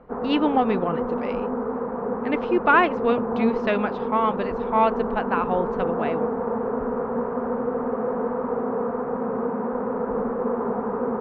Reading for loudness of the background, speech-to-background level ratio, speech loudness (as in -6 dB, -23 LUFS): -27.0 LUFS, 3.0 dB, -24.0 LUFS